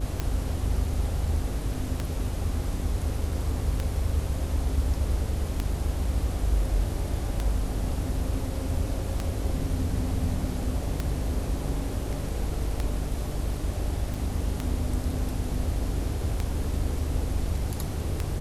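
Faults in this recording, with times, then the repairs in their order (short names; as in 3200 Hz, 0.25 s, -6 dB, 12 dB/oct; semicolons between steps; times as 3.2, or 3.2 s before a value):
buzz 50 Hz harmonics 11 -32 dBFS
tick 33 1/3 rpm -14 dBFS
14.14 pop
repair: de-click; de-hum 50 Hz, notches 11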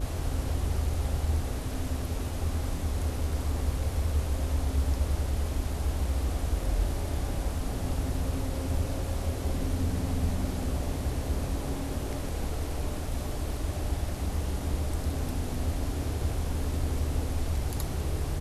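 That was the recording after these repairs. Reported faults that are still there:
none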